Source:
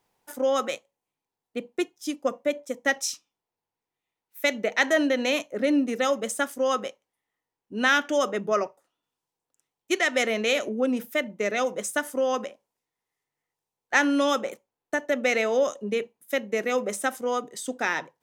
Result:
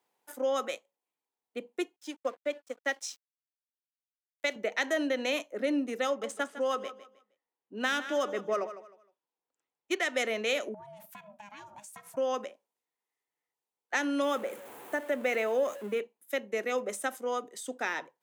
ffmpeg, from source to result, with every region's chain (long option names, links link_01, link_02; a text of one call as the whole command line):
ffmpeg -i in.wav -filter_complex "[0:a]asettb=1/sr,asplit=3[link_01][link_02][link_03];[link_01]atrim=end=1.964[link_04];[link_02]atrim=start=1.96:end=4.56,asetpts=PTS-STARTPTS,afade=type=in:duration=0.004:curve=qsin,afade=type=out:start_time=2.596:duration=0.004:curve=qsin,highpass=240,lowpass=7300,lowshelf=frequency=360:gain=-2.5,aeval=exprs='sgn(val(0))*max(abs(val(0))-0.00447,0)':channel_layout=same[link_05];[link_03]atrim=start=4.556[link_06];[link_04][link_05]acrossfade=duration=0.004:curve1=hsin:curve2=qsin[link_07];[link_07][link_06]acrossfade=duration=0.004:curve1=qsin:curve2=hsin,asettb=1/sr,asplit=3[link_08][link_09][link_10];[link_08]atrim=end=6.064[link_11];[link_09]atrim=start=6.06:end=10.04,asetpts=PTS-STARTPTS,afade=type=in:duration=0.004:curve=qsin,afade=type=out:start_time=3.976:duration=0.004:curve=qsin,adynamicsmooth=sensitivity=4.5:basefreq=4400,aecho=1:1:155|310|465:0.2|0.0539|0.0145,atrim=end_sample=175518[link_12];[link_10]atrim=start=10.036[link_13];[link_11][link_12]acrossfade=duration=0.004:curve1=hsin:curve2=qsin[link_14];[link_14][link_13]acrossfade=duration=0.004:curve1=qsin:curve2=hsin,asettb=1/sr,asplit=3[link_15][link_16][link_17];[link_15]atrim=end=10.744[link_18];[link_16]atrim=start=10.74:end=12.17,asetpts=PTS-STARTPTS,afade=type=in:duration=0.004:curve=qsin,afade=type=out:start_time=1.426:duration=0.004:curve=qsin,aeval=exprs='val(0)*sin(2*PI*410*n/s)':channel_layout=same,acompressor=threshold=-37dB:ratio=12:attack=3.2:release=140:knee=1:detection=peak[link_19];[link_17]atrim=start=12.166[link_20];[link_18][link_19]acrossfade=duration=0.004:curve1=hsin:curve2=qsin[link_21];[link_21][link_20]acrossfade=duration=0.004:curve1=qsin:curve2=hsin,asettb=1/sr,asplit=3[link_22][link_23][link_24];[link_22]atrim=end=14.224[link_25];[link_23]atrim=start=14.22:end=16,asetpts=PTS-STARTPTS,afade=type=in:duration=0.004:curve=qsin,afade=type=out:start_time=1.776:duration=0.004:curve=qsin,aeval=exprs='val(0)+0.5*0.0178*sgn(val(0))':channel_layout=same,equalizer=frequency=4900:width_type=o:width=1.1:gain=-9.5[link_26];[link_24]atrim=start=15.996[link_27];[link_25][link_26]acrossfade=duration=0.004:curve1=hsin:curve2=qsin[link_28];[link_28][link_27]acrossfade=duration=0.004:curve1=qsin:curve2=hsin,highpass=260,equalizer=frequency=5500:width=2.4:gain=-3,acrossover=split=500|3000[link_29][link_30][link_31];[link_30]acompressor=threshold=-23dB:ratio=6[link_32];[link_29][link_32][link_31]amix=inputs=3:normalize=0,volume=-5dB" out.wav